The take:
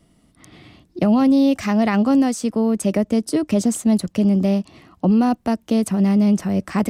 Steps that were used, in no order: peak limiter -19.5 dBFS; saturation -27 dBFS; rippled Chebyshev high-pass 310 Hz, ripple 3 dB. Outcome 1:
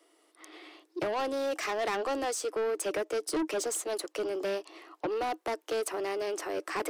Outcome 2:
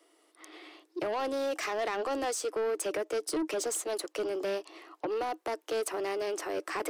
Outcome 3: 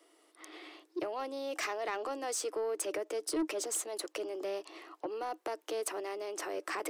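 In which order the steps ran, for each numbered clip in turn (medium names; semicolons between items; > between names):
rippled Chebyshev high-pass > saturation > peak limiter; rippled Chebyshev high-pass > peak limiter > saturation; peak limiter > rippled Chebyshev high-pass > saturation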